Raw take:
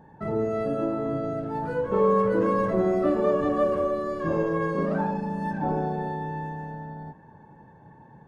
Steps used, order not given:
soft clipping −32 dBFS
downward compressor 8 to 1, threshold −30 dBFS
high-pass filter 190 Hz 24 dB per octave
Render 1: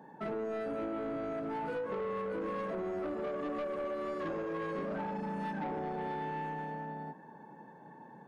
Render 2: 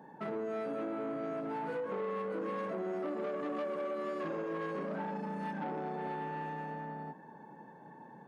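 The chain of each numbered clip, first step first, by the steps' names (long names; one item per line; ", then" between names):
high-pass filter, then downward compressor, then soft clipping
downward compressor, then soft clipping, then high-pass filter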